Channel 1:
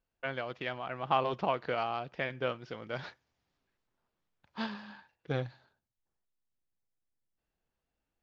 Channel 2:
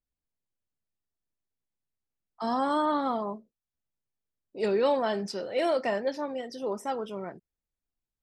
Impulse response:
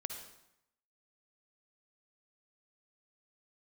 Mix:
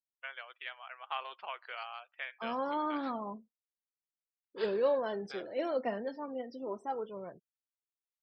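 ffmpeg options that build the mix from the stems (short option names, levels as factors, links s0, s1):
-filter_complex "[0:a]highpass=1300,volume=0.708[s0];[1:a]highshelf=f=2100:g=-8,flanger=delay=1.8:depth=2.6:regen=37:speed=0.41:shape=sinusoidal,volume=0.794[s1];[s0][s1]amix=inputs=2:normalize=0,afftdn=nr=33:nf=-56"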